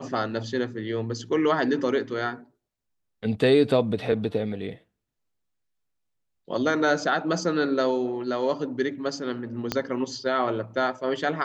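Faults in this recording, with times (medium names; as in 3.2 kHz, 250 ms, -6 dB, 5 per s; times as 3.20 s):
9.72 s: pop -10 dBFS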